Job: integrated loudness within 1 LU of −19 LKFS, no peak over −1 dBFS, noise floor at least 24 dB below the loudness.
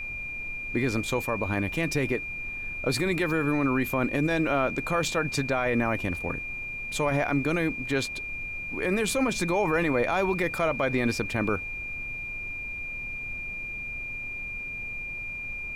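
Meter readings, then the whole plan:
interfering tone 2,400 Hz; level of the tone −33 dBFS; background noise floor −36 dBFS; target noise floor −52 dBFS; integrated loudness −28.0 LKFS; sample peak −14.0 dBFS; target loudness −19.0 LKFS
→ notch filter 2,400 Hz, Q 30
noise reduction from a noise print 16 dB
level +9 dB

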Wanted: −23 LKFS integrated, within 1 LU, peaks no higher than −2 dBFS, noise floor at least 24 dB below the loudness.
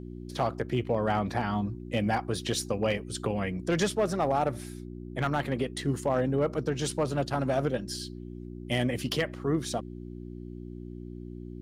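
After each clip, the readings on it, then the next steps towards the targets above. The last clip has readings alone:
share of clipped samples 0.3%; peaks flattened at −18.5 dBFS; mains hum 60 Hz; hum harmonics up to 360 Hz; level of the hum −39 dBFS; integrated loudness −30.0 LKFS; sample peak −18.5 dBFS; target loudness −23.0 LKFS
→ clipped peaks rebuilt −18.5 dBFS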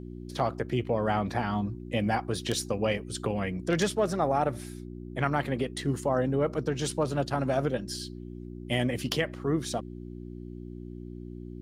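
share of clipped samples 0.0%; mains hum 60 Hz; hum harmonics up to 360 Hz; level of the hum −39 dBFS
→ hum removal 60 Hz, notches 6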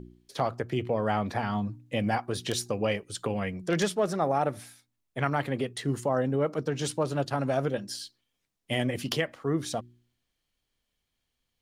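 mains hum none found; integrated loudness −30.0 LKFS; sample peak −10.0 dBFS; target loudness −23.0 LKFS
→ level +7 dB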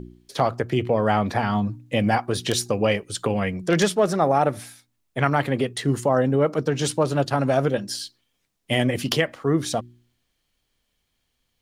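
integrated loudness −23.0 LKFS; sample peak −3.0 dBFS; background noise floor −74 dBFS

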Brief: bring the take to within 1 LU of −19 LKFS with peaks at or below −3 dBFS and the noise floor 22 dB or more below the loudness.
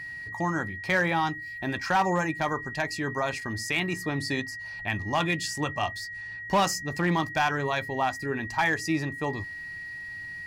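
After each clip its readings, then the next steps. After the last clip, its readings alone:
share of clipped samples 0.4%; peaks flattened at −17.5 dBFS; interfering tone 1,900 Hz; level of the tone −36 dBFS; integrated loudness −28.5 LKFS; sample peak −17.5 dBFS; target loudness −19.0 LKFS
→ clipped peaks rebuilt −17.5 dBFS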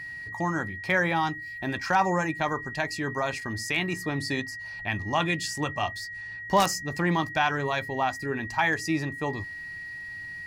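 share of clipped samples 0.0%; interfering tone 1,900 Hz; level of the tone −36 dBFS
→ notch filter 1,900 Hz, Q 30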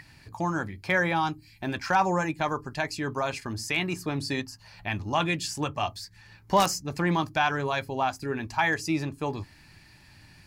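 interfering tone none found; integrated loudness −28.5 LKFS; sample peak −8.5 dBFS; target loudness −19.0 LKFS
→ level +9.5 dB
brickwall limiter −3 dBFS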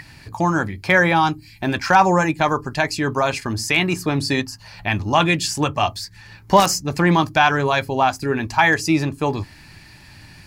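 integrated loudness −19.0 LKFS; sample peak −3.0 dBFS; background noise floor −45 dBFS

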